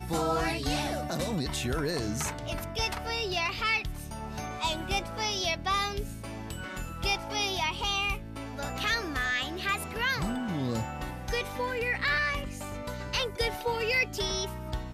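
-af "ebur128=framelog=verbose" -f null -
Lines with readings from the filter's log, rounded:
Integrated loudness:
  I:         -30.6 LUFS
  Threshold: -40.6 LUFS
Loudness range:
  LRA:         1.5 LU
  Threshold: -50.7 LUFS
  LRA low:   -31.3 LUFS
  LRA high:  -29.9 LUFS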